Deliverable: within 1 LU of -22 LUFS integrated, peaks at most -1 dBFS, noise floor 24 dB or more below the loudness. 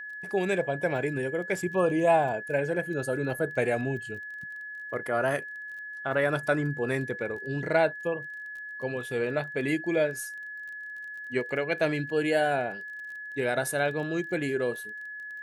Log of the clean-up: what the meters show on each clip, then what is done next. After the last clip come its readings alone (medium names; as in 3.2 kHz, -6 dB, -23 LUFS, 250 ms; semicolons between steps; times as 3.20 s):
tick rate 23 per s; steady tone 1.7 kHz; tone level -37 dBFS; loudness -29.5 LUFS; peak level -10.5 dBFS; loudness target -22.0 LUFS
-> de-click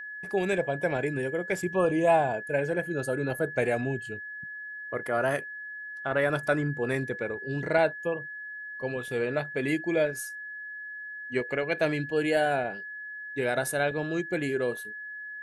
tick rate 0 per s; steady tone 1.7 kHz; tone level -37 dBFS
-> band-stop 1.7 kHz, Q 30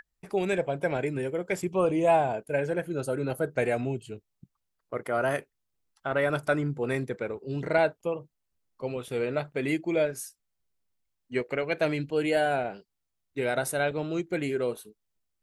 steady tone not found; loudness -29.0 LUFS; peak level -11.0 dBFS; loudness target -22.0 LUFS
-> trim +7 dB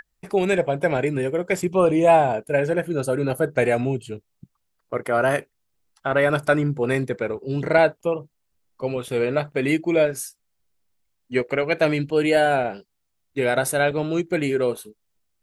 loudness -22.0 LUFS; peak level -4.0 dBFS; noise floor -73 dBFS